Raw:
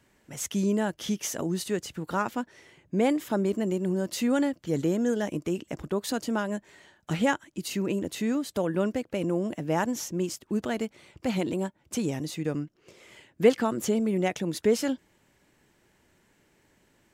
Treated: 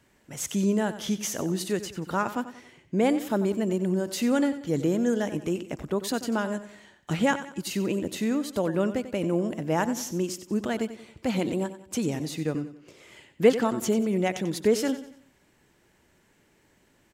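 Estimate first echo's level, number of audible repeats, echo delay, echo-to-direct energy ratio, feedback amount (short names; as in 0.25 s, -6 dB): -13.0 dB, 3, 92 ms, -12.0 dB, 40%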